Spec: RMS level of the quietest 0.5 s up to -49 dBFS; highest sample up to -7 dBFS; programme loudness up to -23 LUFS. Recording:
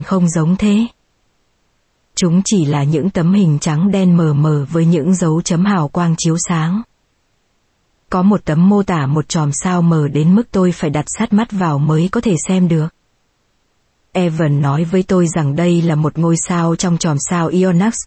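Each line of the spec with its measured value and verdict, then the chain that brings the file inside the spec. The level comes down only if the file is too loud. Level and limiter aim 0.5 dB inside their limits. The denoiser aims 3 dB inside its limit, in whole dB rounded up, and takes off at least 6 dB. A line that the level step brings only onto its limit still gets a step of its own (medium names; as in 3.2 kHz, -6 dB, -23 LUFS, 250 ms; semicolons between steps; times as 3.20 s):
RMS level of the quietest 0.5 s -61 dBFS: pass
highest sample -4.5 dBFS: fail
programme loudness -14.5 LUFS: fail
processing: trim -9 dB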